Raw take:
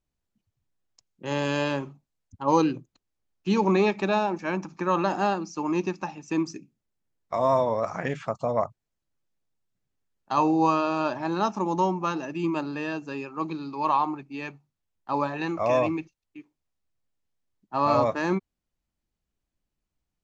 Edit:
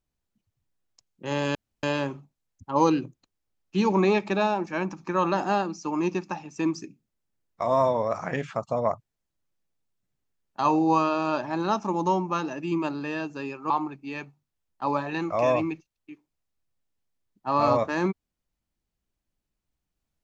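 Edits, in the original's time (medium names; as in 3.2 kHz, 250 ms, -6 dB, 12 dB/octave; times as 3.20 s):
1.55 s: insert room tone 0.28 s
13.42–13.97 s: delete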